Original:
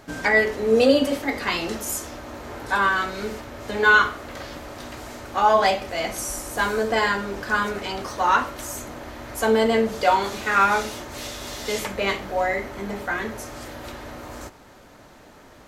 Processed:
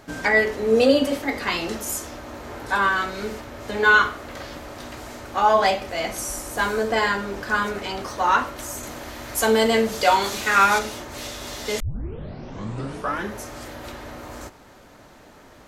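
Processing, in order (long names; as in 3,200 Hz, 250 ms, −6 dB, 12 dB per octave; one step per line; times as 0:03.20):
0:08.83–0:10.79: high-shelf EQ 2,800 Hz +9 dB
0:11.80: tape start 1.58 s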